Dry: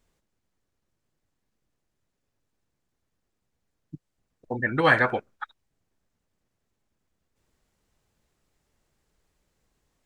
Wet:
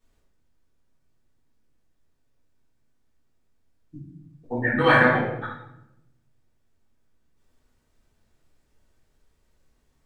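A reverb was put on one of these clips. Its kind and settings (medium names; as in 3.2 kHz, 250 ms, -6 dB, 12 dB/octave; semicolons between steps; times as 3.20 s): simulated room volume 240 m³, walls mixed, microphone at 3.6 m; trim -8 dB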